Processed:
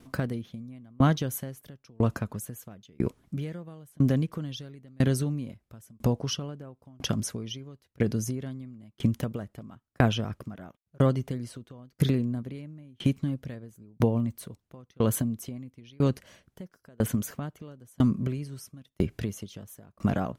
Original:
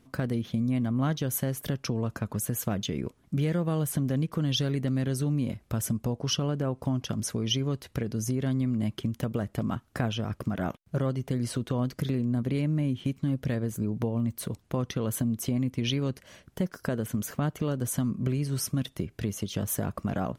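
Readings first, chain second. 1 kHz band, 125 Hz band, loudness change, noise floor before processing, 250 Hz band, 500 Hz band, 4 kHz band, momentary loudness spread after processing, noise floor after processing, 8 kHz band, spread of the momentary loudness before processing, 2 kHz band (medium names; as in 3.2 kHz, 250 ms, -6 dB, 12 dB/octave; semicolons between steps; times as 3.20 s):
+1.0 dB, -1.0 dB, 0.0 dB, -63 dBFS, -1.0 dB, 0.0 dB, -4.5 dB, 21 LU, -76 dBFS, -4.5 dB, 5 LU, 0.0 dB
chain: sawtooth tremolo in dB decaying 1 Hz, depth 35 dB; trim +8 dB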